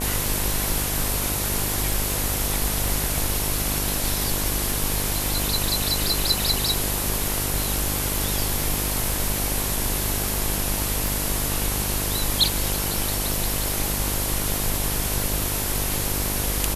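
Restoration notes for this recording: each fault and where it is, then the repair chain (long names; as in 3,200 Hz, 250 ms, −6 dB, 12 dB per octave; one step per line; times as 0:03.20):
mains buzz 50 Hz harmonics 22 −29 dBFS
0:11.07: click
0:13.34: click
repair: click removal
hum removal 50 Hz, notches 22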